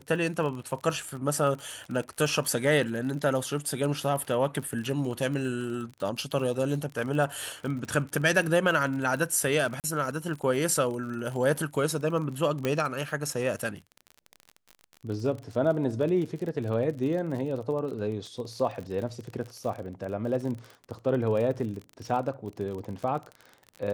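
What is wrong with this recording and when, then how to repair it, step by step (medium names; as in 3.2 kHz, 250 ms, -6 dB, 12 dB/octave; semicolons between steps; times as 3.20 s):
crackle 36 per s -34 dBFS
9.80–9.84 s: dropout 38 ms
12.65 s: pop -14 dBFS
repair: de-click; interpolate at 9.80 s, 38 ms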